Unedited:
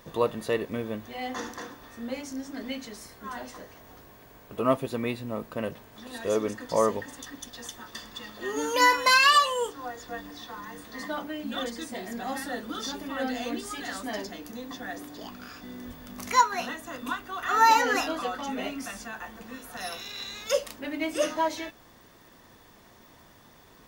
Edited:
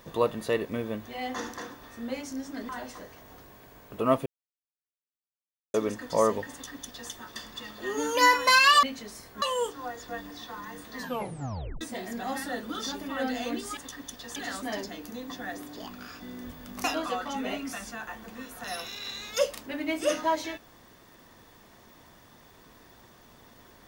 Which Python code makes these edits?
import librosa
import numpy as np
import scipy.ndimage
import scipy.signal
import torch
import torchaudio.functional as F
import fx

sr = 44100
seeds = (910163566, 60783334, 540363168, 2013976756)

y = fx.edit(x, sr, fx.move(start_s=2.69, length_s=0.59, to_s=9.42),
    fx.silence(start_s=4.85, length_s=1.48),
    fx.duplicate(start_s=7.11, length_s=0.59, to_s=13.77),
    fx.tape_stop(start_s=10.97, length_s=0.84),
    fx.cut(start_s=16.25, length_s=1.72), tone=tone)